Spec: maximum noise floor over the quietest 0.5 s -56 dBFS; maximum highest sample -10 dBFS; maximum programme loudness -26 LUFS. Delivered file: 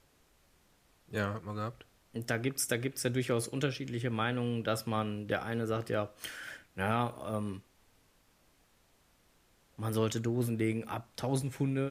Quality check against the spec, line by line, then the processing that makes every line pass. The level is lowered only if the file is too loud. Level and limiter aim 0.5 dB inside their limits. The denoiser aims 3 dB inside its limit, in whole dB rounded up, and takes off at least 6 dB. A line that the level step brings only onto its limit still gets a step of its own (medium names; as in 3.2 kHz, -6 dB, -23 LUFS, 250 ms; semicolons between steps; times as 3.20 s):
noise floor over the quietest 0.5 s -68 dBFS: pass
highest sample -16.0 dBFS: pass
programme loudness -34.5 LUFS: pass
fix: none needed